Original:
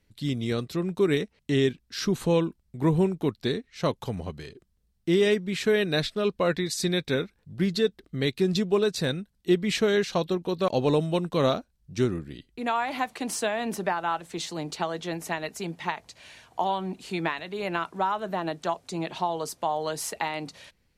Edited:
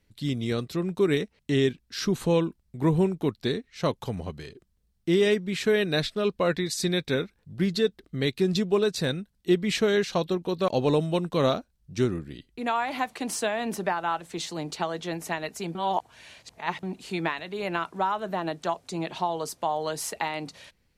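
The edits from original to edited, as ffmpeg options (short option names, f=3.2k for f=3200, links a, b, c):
-filter_complex "[0:a]asplit=3[a][b][c];[a]atrim=end=15.752[d];[b]atrim=start=15.748:end=16.832,asetpts=PTS-STARTPTS,areverse[e];[c]atrim=start=16.828[f];[d][e]acrossfade=d=0.004:c1=hsin:c2=hsin[g];[g][f]acrossfade=d=0.004:c1=hsin:c2=hsin"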